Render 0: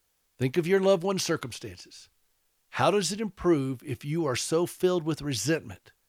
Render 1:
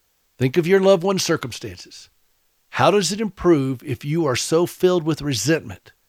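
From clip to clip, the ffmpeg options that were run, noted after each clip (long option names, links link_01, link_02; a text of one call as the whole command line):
ffmpeg -i in.wav -af "equalizer=frequency=9800:width=6.3:gain=-12,volume=8dB" out.wav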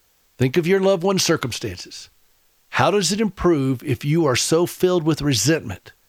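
ffmpeg -i in.wav -af "acompressor=threshold=-18dB:ratio=6,volume=4.5dB" out.wav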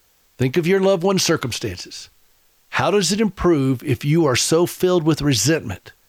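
ffmpeg -i in.wav -af "alimiter=level_in=8.5dB:limit=-1dB:release=50:level=0:latency=1,volume=-6.5dB" out.wav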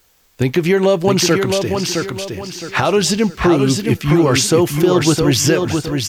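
ffmpeg -i in.wav -af "aecho=1:1:664|1328|1992|2656:0.562|0.191|0.065|0.0221,volume=2.5dB" out.wav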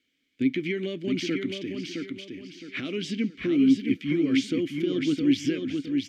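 ffmpeg -i in.wav -filter_complex "[0:a]asplit=3[link_01][link_02][link_03];[link_01]bandpass=frequency=270:width_type=q:width=8,volume=0dB[link_04];[link_02]bandpass=frequency=2290:width_type=q:width=8,volume=-6dB[link_05];[link_03]bandpass=frequency=3010:width_type=q:width=8,volume=-9dB[link_06];[link_04][link_05][link_06]amix=inputs=3:normalize=0" out.wav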